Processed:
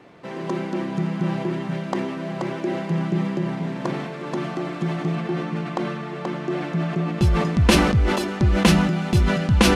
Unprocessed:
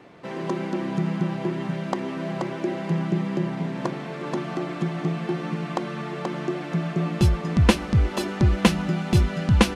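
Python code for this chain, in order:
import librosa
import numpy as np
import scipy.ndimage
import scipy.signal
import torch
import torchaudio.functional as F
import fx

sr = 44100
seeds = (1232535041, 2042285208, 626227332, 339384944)

y = fx.high_shelf(x, sr, hz=5000.0, db=-5.0, at=(5.15, 7.27))
y = fx.sustainer(y, sr, db_per_s=38.0)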